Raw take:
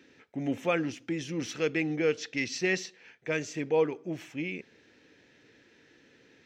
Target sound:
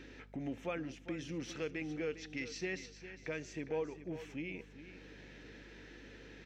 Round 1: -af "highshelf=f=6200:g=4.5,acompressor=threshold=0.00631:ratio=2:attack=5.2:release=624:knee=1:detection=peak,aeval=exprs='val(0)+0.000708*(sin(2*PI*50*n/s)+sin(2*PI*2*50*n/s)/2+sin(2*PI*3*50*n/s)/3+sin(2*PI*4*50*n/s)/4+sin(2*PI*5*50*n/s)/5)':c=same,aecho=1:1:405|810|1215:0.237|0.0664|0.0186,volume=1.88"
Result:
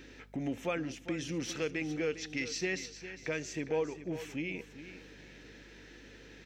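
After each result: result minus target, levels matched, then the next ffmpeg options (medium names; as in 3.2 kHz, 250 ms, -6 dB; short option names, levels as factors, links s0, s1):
compression: peak gain reduction -5 dB; 8 kHz band +4.5 dB
-af "highshelf=f=6200:g=4.5,acompressor=threshold=0.002:ratio=2:attack=5.2:release=624:knee=1:detection=peak,aeval=exprs='val(0)+0.000708*(sin(2*PI*50*n/s)+sin(2*PI*2*50*n/s)/2+sin(2*PI*3*50*n/s)/3+sin(2*PI*4*50*n/s)/4+sin(2*PI*5*50*n/s)/5)':c=same,aecho=1:1:405|810|1215:0.237|0.0664|0.0186,volume=1.88"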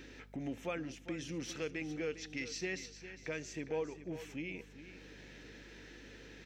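8 kHz band +4.5 dB
-af "highshelf=f=6200:g=-6.5,acompressor=threshold=0.002:ratio=2:attack=5.2:release=624:knee=1:detection=peak,aeval=exprs='val(0)+0.000708*(sin(2*PI*50*n/s)+sin(2*PI*2*50*n/s)/2+sin(2*PI*3*50*n/s)/3+sin(2*PI*4*50*n/s)/4+sin(2*PI*5*50*n/s)/5)':c=same,aecho=1:1:405|810|1215:0.237|0.0664|0.0186,volume=1.88"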